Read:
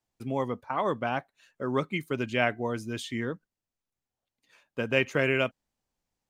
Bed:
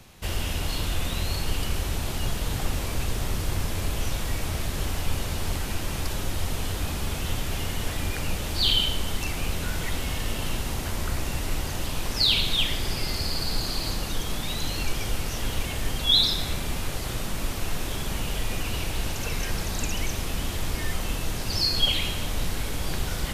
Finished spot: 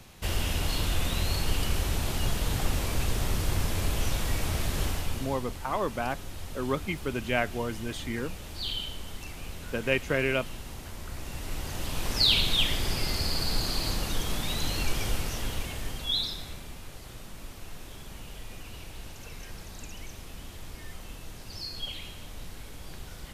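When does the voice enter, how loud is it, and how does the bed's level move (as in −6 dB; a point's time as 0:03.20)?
4.95 s, −1.5 dB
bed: 0:04.85 −0.5 dB
0:05.47 −11.5 dB
0:11.04 −11.5 dB
0:12.13 −1 dB
0:15.09 −1 dB
0:16.78 −14 dB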